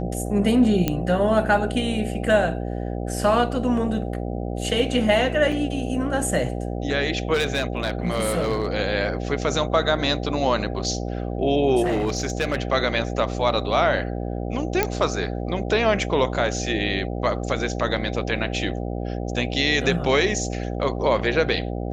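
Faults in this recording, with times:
mains buzz 60 Hz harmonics 13 −28 dBFS
0:00.88: click −7 dBFS
0:05.52: drop-out 4.2 ms
0:07.33–0:08.67: clipping −17.5 dBFS
0:11.84–0:12.60: clipping −18 dBFS
0:14.83: click −5 dBFS

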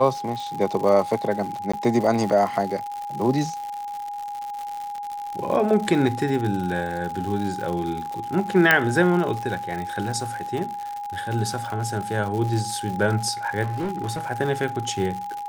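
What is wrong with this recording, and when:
surface crackle 150 per second −29 dBFS
whistle 820 Hz −29 dBFS
0:01.72–0:01.74: drop-out 15 ms
0:08.71: click −3 dBFS
0:13.62–0:14.26: clipping −23 dBFS

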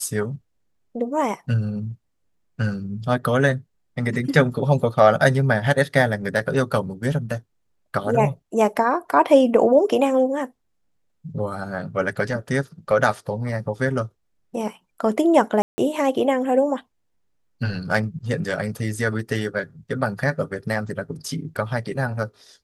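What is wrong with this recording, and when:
0:15.62–0:15.78: drop-out 160 ms

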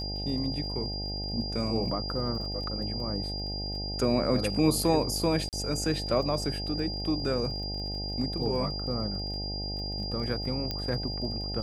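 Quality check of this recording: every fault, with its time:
mains buzz 50 Hz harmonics 17 −36 dBFS
surface crackle 31 per second −40 dBFS
whistle 4,800 Hz −35 dBFS
0:05.49–0:05.53: drop-out 38 ms
0:10.71: click −17 dBFS

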